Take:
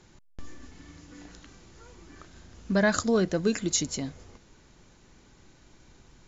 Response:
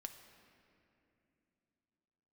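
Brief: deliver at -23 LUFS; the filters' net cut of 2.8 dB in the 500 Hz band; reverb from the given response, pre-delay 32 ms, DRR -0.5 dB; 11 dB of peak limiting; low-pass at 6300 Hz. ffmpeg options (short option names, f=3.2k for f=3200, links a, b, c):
-filter_complex "[0:a]lowpass=6.3k,equalizer=f=500:t=o:g=-3.5,alimiter=limit=-23dB:level=0:latency=1,asplit=2[a][b];[1:a]atrim=start_sample=2205,adelay=32[c];[b][c]afir=irnorm=-1:irlink=0,volume=5dB[d];[a][d]amix=inputs=2:normalize=0,volume=7dB"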